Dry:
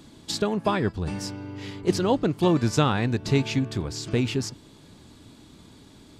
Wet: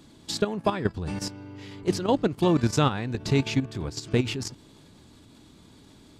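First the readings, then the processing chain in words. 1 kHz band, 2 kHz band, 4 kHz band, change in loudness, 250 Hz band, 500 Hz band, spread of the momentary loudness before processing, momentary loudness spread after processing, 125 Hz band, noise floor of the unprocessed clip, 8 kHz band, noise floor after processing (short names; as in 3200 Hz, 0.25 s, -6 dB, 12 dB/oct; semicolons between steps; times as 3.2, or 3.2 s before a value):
-1.5 dB, -2.0 dB, -1.0 dB, -1.5 dB, -1.5 dB, -1.0 dB, 11 LU, 11 LU, -1.5 dB, -51 dBFS, -1.0 dB, -53 dBFS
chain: level quantiser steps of 11 dB; gain +2.5 dB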